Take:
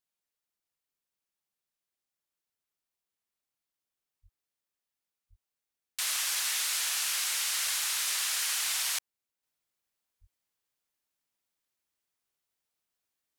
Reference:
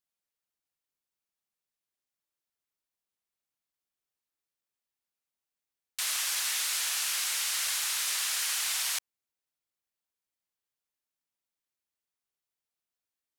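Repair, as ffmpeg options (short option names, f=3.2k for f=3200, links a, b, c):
-filter_complex "[0:a]asplit=3[a][b][c];[a]afade=t=out:st=4.22:d=0.02[d];[b]highpass=f=140:w=0.5412,highpass=f=140:w=1.3066,afade=t=in:st=4.22:d=0.02,afade=t=out:st=4.34:d=0.02[e];[c]afade=t=in:st=4.34:d=0.02[f];[d][e][f]amix=inputs=3:normalize=0,asplit=3[g][h][i];[g]afade=t=out:st=5.29:d=0.02[j];[h]highpass=f=140:w=0.5412,highpass=f=140:w=1.3066,afade=t=in:st=5.29:d=0.02,afade=t=out:st=5.41:d=0.02[k];[i]afade=t=in:st=5.41:d=0.02[l];[j][k][l]amix=inputs=3:normalize=0,asplit=3[m][n][o];[m]afade=t=out:st=10.2:d=0.02[p];[n]highpass=f=140:w=0.5412,highpass=f=140:w=1.3066,afade=t=in:st=10.2:d=0.02,afade=t=out:st=10.32:d=0.02[q];[o]afade=t=in:st=10.32:d=0.02[r];[p][q][r]amix=inputs=3:normalize=0,asetnsamples=n=441:p=0,asendcmd='9.43 volume volume -4.5dB',volume=0dB"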